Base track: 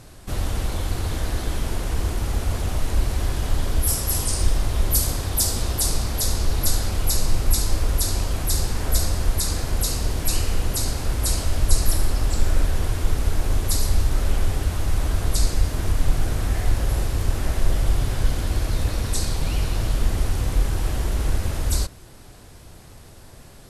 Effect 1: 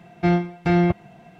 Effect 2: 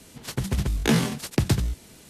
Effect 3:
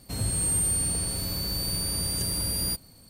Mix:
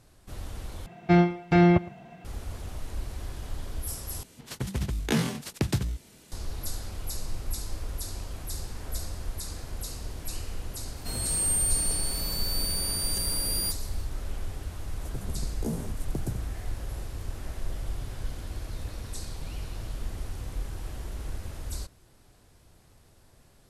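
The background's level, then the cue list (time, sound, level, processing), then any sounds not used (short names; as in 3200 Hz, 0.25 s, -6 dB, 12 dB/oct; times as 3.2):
base track -13.5 dB
0.86 replace with 1 -0.5 dB + echo 0.111 s -20.5 dB
4.23 replace with 2 -5 dB
10.96 add 3 -0.5 dB + HPF 310 Hz 6 dB/oct
14.77 add 2 -10.5 dB + Chebyshev band-stop 650–8600 Hz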